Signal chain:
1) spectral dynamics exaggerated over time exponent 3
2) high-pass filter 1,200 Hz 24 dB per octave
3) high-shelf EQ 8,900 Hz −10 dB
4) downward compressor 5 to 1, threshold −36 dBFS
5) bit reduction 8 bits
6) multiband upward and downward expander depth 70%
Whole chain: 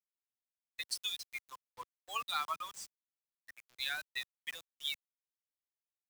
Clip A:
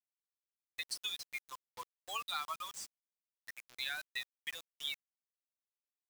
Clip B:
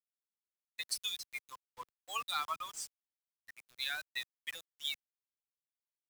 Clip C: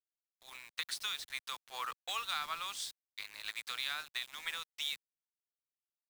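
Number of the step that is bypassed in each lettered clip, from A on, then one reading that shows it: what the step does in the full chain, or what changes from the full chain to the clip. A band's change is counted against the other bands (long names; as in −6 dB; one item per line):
6, 1 kHz band −2.0 dB
3, 8 kHz band +3.0 dB
1, 1 kHz band −2.0 dB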